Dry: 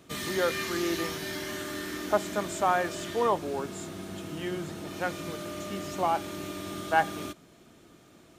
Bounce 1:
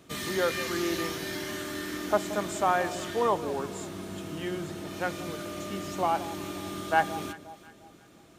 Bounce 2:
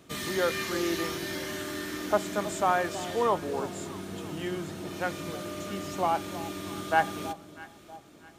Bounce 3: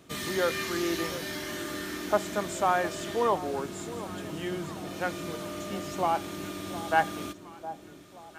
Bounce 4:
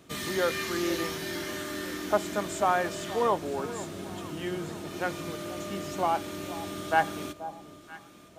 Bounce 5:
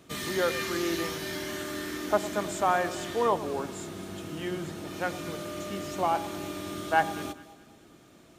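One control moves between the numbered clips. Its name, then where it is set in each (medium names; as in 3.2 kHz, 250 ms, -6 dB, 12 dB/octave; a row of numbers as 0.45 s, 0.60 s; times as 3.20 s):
echo whose repeats swap between lows and highs, time: 176 ms, 322 ms, 712 ms, 481 ms, 106 ms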